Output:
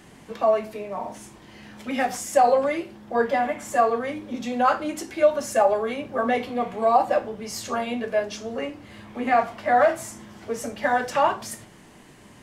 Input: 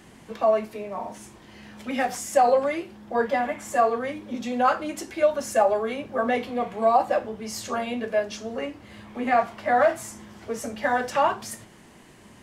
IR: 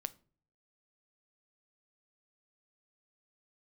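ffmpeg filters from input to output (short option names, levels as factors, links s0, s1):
-filter_complex "[1:a]atrim=start_sample=2205[s0];[0:a][s0]afir=irnorm=-1:irlink=0,volume=1.41"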